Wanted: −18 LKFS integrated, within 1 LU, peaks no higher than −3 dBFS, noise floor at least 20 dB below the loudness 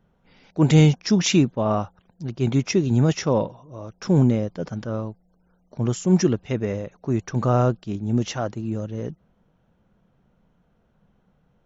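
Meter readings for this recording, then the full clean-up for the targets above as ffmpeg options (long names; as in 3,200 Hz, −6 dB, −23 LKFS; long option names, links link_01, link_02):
integrated loudness −22.0 LKFS; sample peak −5.5 dBFS; target loudness −18.0 LKFS
→ -af "volume=4dB,alimiter=limit=-3dB:level=0:latency=1"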